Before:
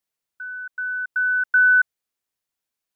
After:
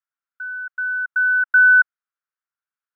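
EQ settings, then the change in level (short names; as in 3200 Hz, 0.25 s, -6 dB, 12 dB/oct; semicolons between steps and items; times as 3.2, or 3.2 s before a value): band-pass 1400 Hz, Q 5; +5.0 dB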